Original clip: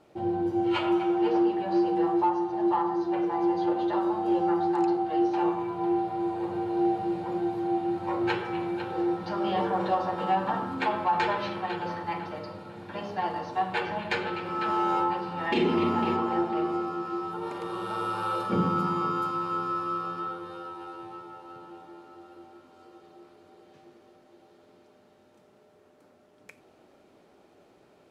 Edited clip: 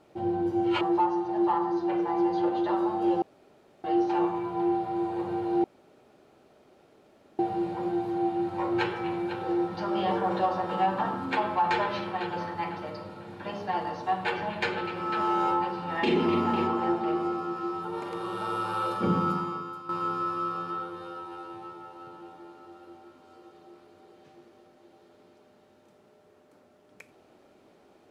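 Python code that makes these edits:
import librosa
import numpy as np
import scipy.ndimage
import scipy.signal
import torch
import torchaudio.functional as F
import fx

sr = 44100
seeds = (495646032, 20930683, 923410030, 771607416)

y = fx.edit(x, sr, fx.cut(start_s=0.81, length_s=1.24),
    fx.room_tone_fill(start_s=4.46, length_s=0.62),
    fx.insert_room_tone(at_s=6.88, length_s=1.75),
    fx.fade_out_to(start_s=18.77, length_s=0.61, curve='qua', floor_db=-12.0), tone=tone)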